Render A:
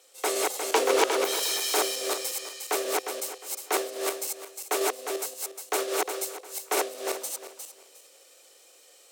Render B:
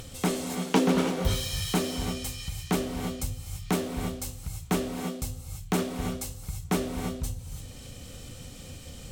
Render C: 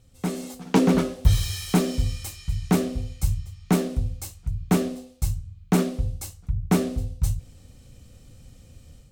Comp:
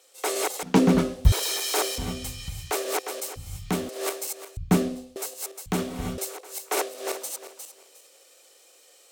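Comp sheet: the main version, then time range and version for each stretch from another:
A
0.63–1.32 s: from C
1.98–2.71 s: from B
3.36–3.89 s: from B
4.57–5.16 s: from C
5.66–6.18 s: from B

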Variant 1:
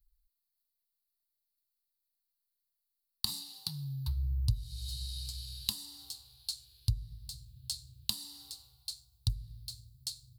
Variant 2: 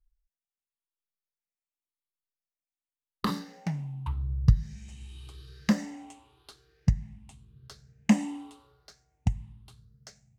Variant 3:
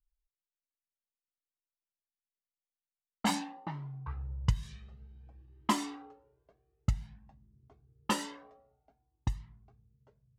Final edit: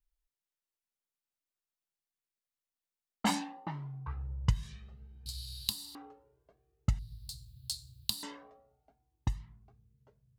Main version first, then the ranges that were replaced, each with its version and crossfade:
3
5.26–5.95 s: from 1
6.99–8.23 s: from 1
not used: 2

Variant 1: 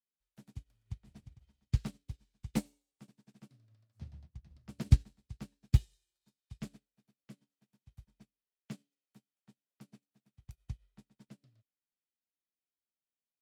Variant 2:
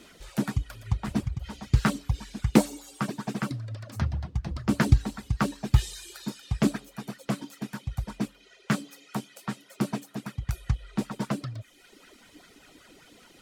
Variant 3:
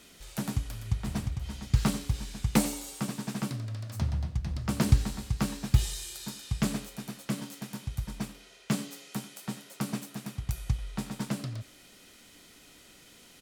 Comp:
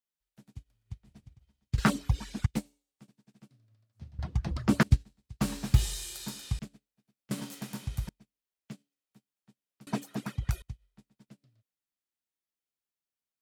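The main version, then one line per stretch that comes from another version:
1
1.78–2.46 s: from 2
4.19–4.83 s: from 2
5.41–6.59 s: from 3
7.31–8.09 s: from 3
9.87–10.62 s: from 2

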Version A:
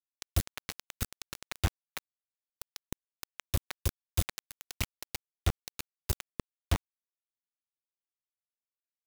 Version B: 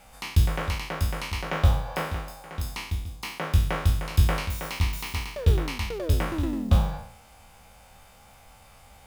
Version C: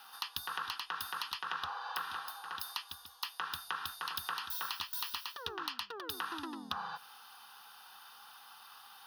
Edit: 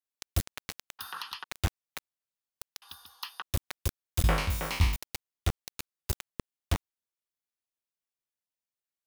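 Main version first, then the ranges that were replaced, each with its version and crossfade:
A
0.99–1.44 s: from C
2.82–3.42 s: from C
4.24–4.96 s: from B

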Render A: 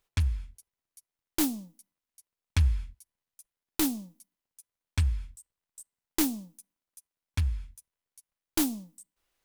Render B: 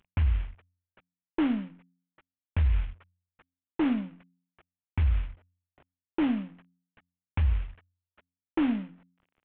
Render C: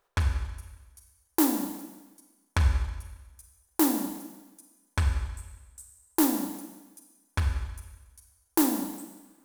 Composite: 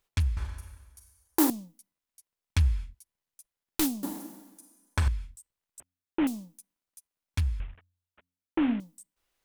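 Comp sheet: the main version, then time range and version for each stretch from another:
A
0.37–1.50 s: from C
4.03–5.08 s: from C
5.80–6.27 s: from B
7.60–8.80 s: from B

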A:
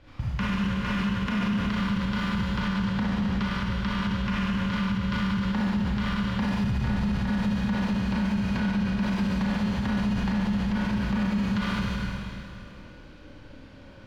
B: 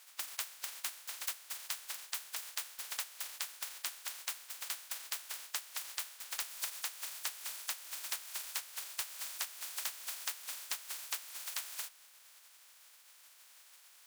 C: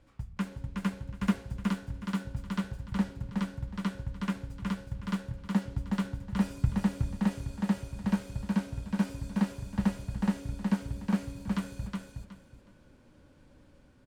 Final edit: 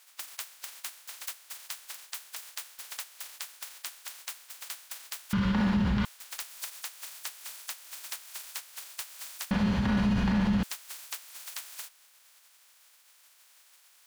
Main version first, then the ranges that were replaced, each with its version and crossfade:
B
5.33–6.05 s: from A
9.51–10.63 s: from A
not used: C

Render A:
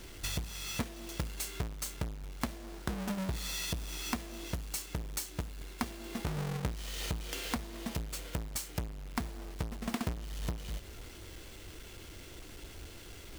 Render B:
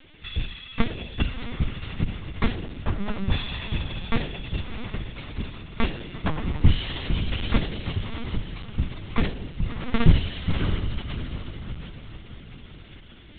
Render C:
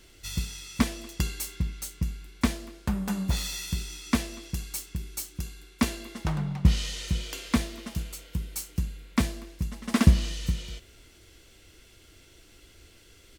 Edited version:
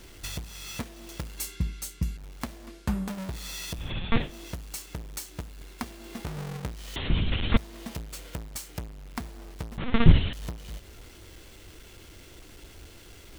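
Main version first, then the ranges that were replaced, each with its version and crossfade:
A
1.39–2.17 s: from C
2.67–3.08 s: from C
3.84–4.26 s: from B, crossfade 0.16 s
6.96–7.57 s: from B
9.78–10.33 s: from B

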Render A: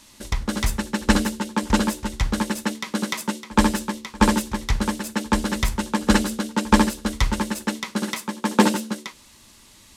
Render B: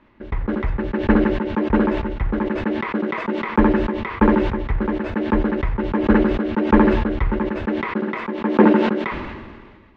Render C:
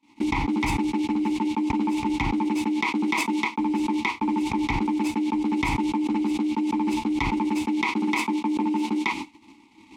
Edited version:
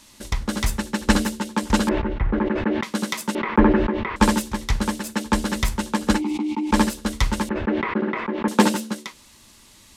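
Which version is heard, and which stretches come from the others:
A
1.89–2.83 s: from B
3.35–4.16 s: from B
6.15–6.73 s: from C, crossfade 0.16 s
7.49–8.48 s: from B

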